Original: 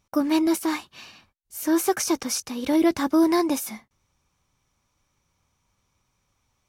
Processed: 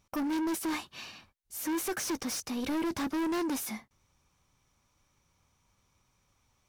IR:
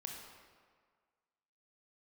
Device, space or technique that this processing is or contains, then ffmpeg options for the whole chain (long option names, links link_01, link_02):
saturation between pre-emphasis and de-emphasis: -af "highshelf=frequency=4900:gain=6.5,asoftclip=type=tanh:threshold=-29dB,highshelf=frequency=4900:gain=-6.5"